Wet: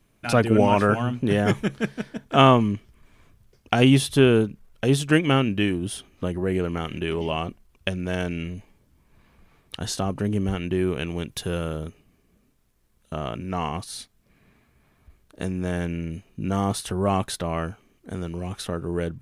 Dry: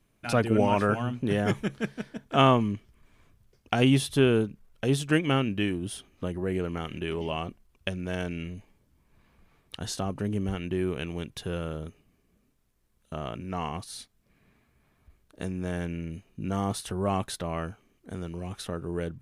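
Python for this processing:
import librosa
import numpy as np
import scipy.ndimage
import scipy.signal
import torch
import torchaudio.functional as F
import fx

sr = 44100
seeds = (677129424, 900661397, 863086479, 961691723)

y = fx.high_shelf(x, sr, hz=fx.line((11.29, 5500.0), (11.85, 11000.0)), db=7.5, at=(11.29, 11.85), fade=0.02)
y = F.gain(torch.from_numpy(y), 5.0).numpy()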